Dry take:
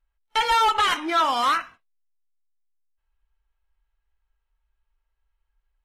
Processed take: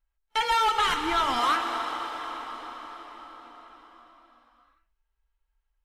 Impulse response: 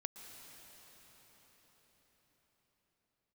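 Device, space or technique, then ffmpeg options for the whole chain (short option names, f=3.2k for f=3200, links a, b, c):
cathedral: -filter_complex "[1:a]atrim=start_sample=2205[a];[0:a][a]afir=irnorm=-1:irlink=0,asplit=3[b][c][d];[b]afade=t=out:st=0.83:d=0.02[e];[c]asubboost=boost=9.5:cutoff=220,afade=t=in:st=0.83:d=0.02,afade=t=out:st=1.38:d=0.02[f];[d]afade=t=in:st=1.38:d=0.02[g];[e][f][g]amix=inputs=3:normalize=0"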